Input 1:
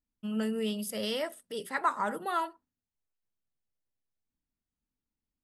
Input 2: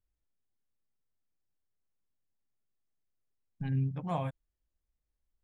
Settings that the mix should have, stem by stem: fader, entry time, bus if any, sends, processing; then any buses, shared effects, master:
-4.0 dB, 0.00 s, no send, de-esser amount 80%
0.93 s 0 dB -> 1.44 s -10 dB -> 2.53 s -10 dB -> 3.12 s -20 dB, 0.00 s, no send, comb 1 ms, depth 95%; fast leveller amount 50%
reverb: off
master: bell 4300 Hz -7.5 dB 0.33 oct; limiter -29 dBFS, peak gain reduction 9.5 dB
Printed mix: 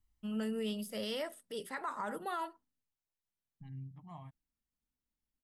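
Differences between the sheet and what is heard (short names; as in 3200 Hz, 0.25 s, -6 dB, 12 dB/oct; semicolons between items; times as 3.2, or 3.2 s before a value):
stem 2: missing fast leveller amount 50%; master: missing bell 4300 Hz -7.5 dB 0.33 oct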